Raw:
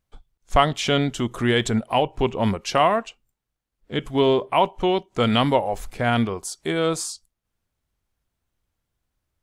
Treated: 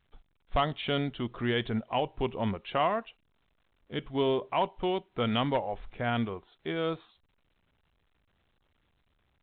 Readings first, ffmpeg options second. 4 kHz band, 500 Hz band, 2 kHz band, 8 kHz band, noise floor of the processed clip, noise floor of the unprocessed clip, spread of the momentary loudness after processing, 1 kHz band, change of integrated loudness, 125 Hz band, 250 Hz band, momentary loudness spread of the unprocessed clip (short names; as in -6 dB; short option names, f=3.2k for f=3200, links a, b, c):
-9.5 dB, -9.0 dB, -9.0 dB, under -40 dB, -72 dBFS, -81 dBFS, 8 LU, -9.5 dB, -9.0 dB, -9.0 dB, -9.0 dB, 8 LU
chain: -af "aeval=exprs='0.376*(abs(mod(val(0)/0.376+3,4)-2)-1)':c=same,volume=-9dB" -ar 8000 -c:a pcm_alaw